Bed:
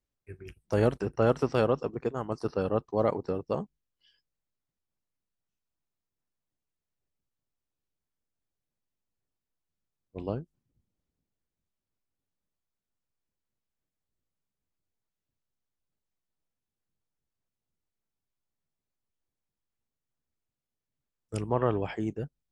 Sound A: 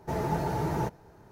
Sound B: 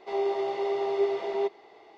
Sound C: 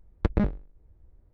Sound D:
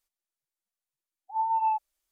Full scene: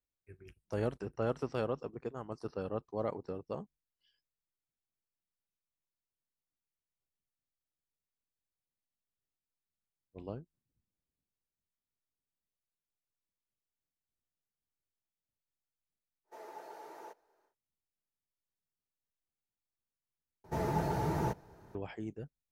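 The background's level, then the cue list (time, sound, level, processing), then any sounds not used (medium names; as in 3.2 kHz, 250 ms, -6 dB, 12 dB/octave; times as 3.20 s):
bed -9.5 dB
16.24 s: add A -16.5 dB, fades 0.10 s + high-pass 400 Hz 24 dB/octave
20.44 s: replace with A -3.5 dB
not used: B, C, D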